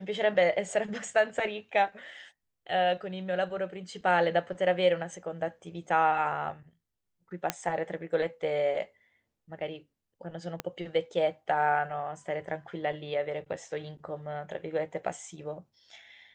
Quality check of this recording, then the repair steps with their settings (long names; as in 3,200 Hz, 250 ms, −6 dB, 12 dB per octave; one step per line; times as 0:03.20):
0:07.50: click −10 dBFS
0:10.60: click −17 dBFS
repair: click removal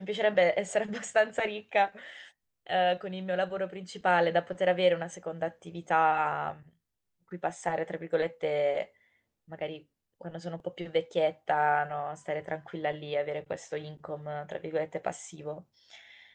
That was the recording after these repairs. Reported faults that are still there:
0:10.60: click